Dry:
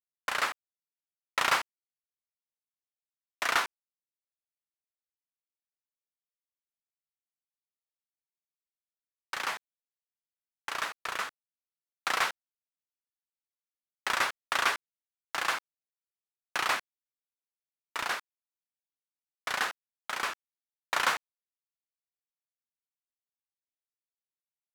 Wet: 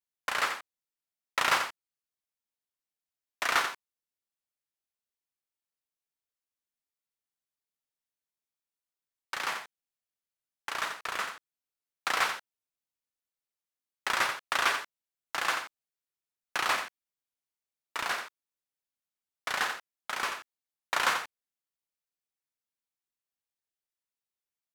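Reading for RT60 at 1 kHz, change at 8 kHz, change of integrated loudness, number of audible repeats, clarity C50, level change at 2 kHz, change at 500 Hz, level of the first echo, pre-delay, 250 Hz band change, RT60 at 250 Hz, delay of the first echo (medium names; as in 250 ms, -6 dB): no reverb, +0.5 dB, +0.5 dB, 1, no reverb, +0.5 dB, +0.5 dB, -8.0 dB, no reverb, +0.5 dB, no reverb, 87 ms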